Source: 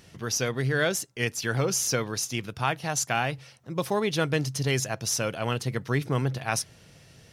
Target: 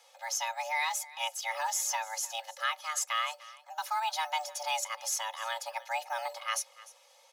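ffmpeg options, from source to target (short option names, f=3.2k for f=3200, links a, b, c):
-filter_complex "[0:a]acrossover=split=330[a][b];[a]acrusher=samples=9:mix=1:aa=0.000001:lfo=1:lforange=5.4:lforate=1.3[c];[c][b]amix=inputs=2:normalize=0,afreqshift=450,equalizer=f=540:w=1.4:g=-5.5,aecho=1:1:2.4:0.86,aecho=1:1:300:0.106,volume=-7dB"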